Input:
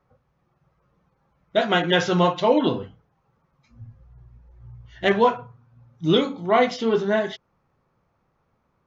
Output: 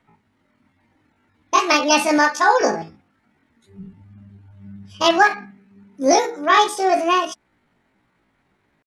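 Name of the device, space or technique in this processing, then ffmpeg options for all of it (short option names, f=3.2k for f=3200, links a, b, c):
chipmunk voice: -filter_complex "[0:a]asettb=1/sr,asplit=3[a][b][c];[a]atrim=end=2.194[d];[b]atrim=start=2.19:end=2.64,asetpts=PTS-STARTPTS,afade=t=in:d=0.004:c=qsin,afade=t=out:st=0.446:d=0.004:c=qsin,equalizer=f=140:w=1.4:g=-8.5[e];[c]atrim=start=2.636[f];[d][e]acrossfade=d=0.004:c1=hsin:c2=qsin[g];[g][f]acrossfade=d=0.004:c1=qsin:c2=hsin,asetrate=74167,aresample=44100,atempo=0.594604,volume=4dB"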